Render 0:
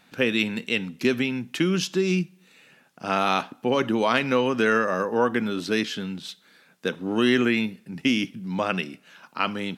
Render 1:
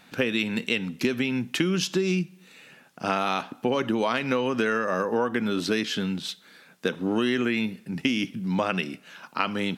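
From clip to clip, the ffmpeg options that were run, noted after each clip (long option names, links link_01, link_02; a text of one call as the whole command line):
ffmpeg -i in.wav -af "acompressor=threshold=-25dB:ratio=6,volume=4dB" out.wav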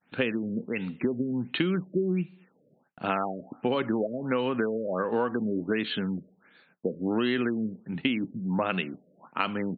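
ffmpeg -i in.wav -af "agate=range=-33dB:threshold=-46dB:ratio=3:detection=peak,acrusher=bits=8:mode=log:mix=0:aa=0.000001,afftfilt=real='re*lt(b*sr/1024,620*pow(4600/620,0.5+0.5*sin(2*PI*1.4*pts/sr)))':imag='im*lt(b*sr/1024,620*pow(4600/620,0.5+0.5*sin(2*PI*1.4*pts/sr)))':win_size=1024:overlap=0.75,volume=-2dB" out.wav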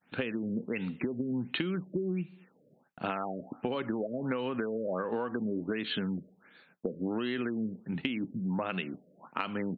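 ffmpeg -i in.wav -af "acompressor=threshold=-29dB:ratio=6" out.wav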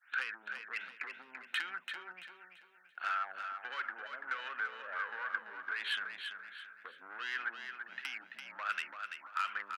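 ffmpeg -i in.wav -af "asoftclip=type=tanh:threshold=-30.5dB,highpass=frequency=1500:width_type=q:width=4.5,aecho=1:1:337|674|1011|1348:0.447|0.152|0.0516|0.0176,volume=-1.5dB" out.wav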